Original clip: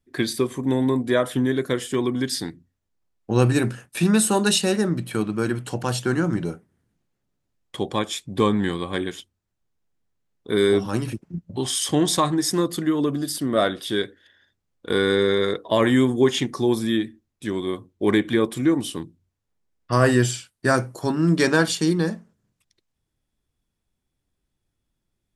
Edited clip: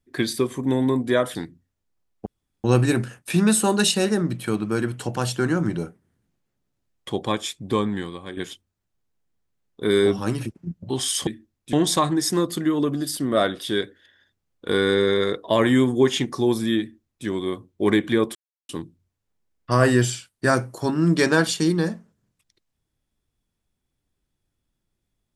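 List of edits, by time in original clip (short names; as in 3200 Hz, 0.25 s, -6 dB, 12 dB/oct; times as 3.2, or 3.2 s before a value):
1.35–2.4 cut
3.31 insert room tone 0.38 s
8.08–9.04 fade out, to -11.5 dB
17.01–17.47 copy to 11.94
18.56–18.9 mute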